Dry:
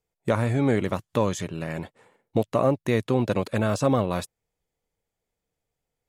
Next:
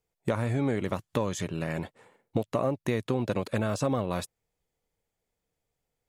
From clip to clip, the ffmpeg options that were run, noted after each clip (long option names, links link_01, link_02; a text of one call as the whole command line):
ffmpeg -i in.wav -af "acompressor=threshold=-24dB:ratio=4" out.wav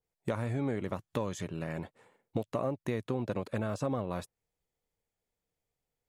ffmpeg -i in.wav -af "adynamicequalizer=threshold=0.00501:dfrequency=2100:dqfactor=0.7:tfrequency=2100:tqfactor=0.7:attack=5:release=100:ratio=0.375:range=3:mode=cutabove:tftype=highshelf,volume=-5dB" out.wav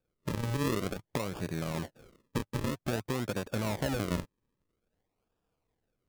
ffmpeg -i in.wav -filter_complex "[0:a]asplit=2[link_01][link_02];[link_02]acompressor=threshold=-40dB:ratio=6,volume=0.5dB[link_03];[link_01][link_03]amix=inputs=2:normalize=0,alimiter=limit=-19dB:level=0:latency=1:release=350,acrusher=samples=42:mix=1:aa=0.000001:lfo=1:lforange=42:lforate=0.51" out.wav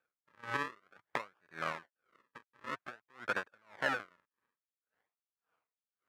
ffmpeg -i in.wav -af "bandpass=frequency=1500:width_type=q:width=2.2:csg=0,aeval=exprs='val(0)*pow(10,-37*(0.5-0.5*cos(2*PI*1.8*n/s))/20)':channel_layout=same,volume=12.5dB" out.wav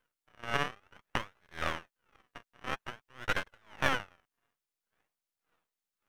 ffmpeg -i in.wav -af "aeval=exprs='max(val(0),0)':channel_layout=same,volume=7.5dB" out.wav